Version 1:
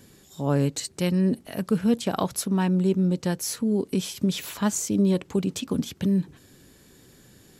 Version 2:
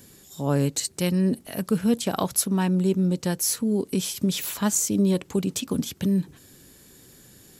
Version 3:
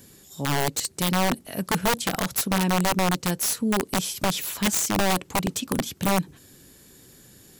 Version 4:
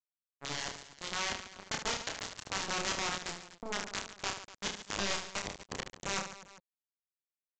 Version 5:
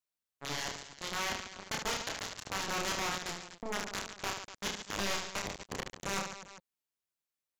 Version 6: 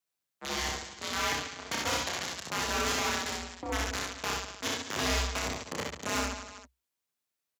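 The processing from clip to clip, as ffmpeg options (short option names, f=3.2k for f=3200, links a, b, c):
-af "highshelf=f=6.7k:g=9.5"
-af "aeval=exprs='(mod(6.68*val(0)+1,2)-1)/6.68':c=same"
-af "aresample=16000,acrusher=bits=2:mix=0:aa=0.5,aresample=44100,aecho=1:1:30|75|142.5|243.8|395.6:0.631|0.398|0.251|0.158|0.1,volume=-7dB"
-af "asoftclip=type=tanh:threshold=-30dB,volume=3.5dB"
-af "aecho=1:1:62|72:0.708|0.266,afreqshift=63,volume=2.5dB"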